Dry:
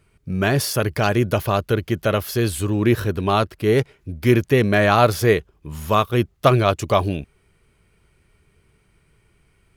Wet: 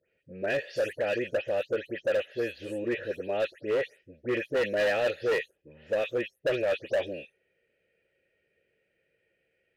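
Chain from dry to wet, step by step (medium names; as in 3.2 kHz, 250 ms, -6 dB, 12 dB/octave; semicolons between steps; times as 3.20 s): delay that grows with frequency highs late, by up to 168 ms; vowel filter e; hard clipper -26 dBFS, distortion -9 dB; trim +3.5 dB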